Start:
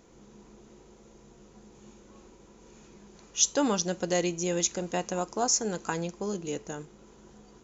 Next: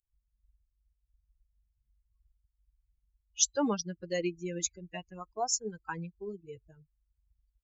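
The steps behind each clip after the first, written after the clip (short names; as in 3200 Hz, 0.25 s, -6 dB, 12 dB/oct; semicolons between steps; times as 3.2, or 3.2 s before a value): per-bin expansion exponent 3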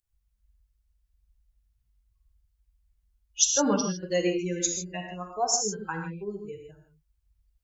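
non-linear reverb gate 0.18 s flat, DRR 2 dB; gain +4 dB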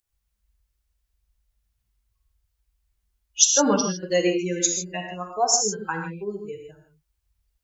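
low shelf 120 Hz -11 dB; gain +5.5 dB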